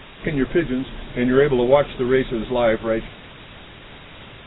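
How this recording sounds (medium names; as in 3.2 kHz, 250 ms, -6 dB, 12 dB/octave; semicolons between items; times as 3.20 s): a quantiser's noise floor 6-bit, dither triangular; AAC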